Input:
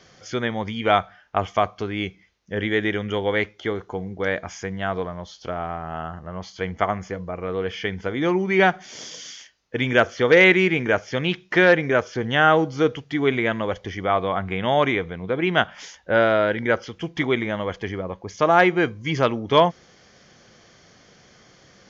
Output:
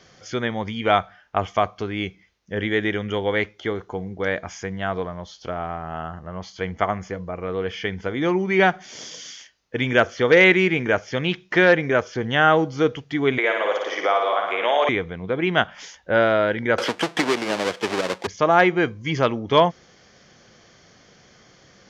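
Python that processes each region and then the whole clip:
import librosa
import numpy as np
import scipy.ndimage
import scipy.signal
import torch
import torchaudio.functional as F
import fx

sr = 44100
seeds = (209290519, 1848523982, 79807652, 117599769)

y = fx.chain(x, sr, fx.highpass(hz=420.0, slope=24),
    fx.room_flutter(wall_m=9.7, rt60_s=0.85),
    fx.band_squash(depth_pct=70), at=(13.38, 14.89))
y = fx.chain(y, sr, fx.halfwave_hold(),
    fx.bandpass_edges(low_hz=330.0, high_hz=5800.0),
    fx.band_squash(depth_pct=100), at=(16.78, 18.27))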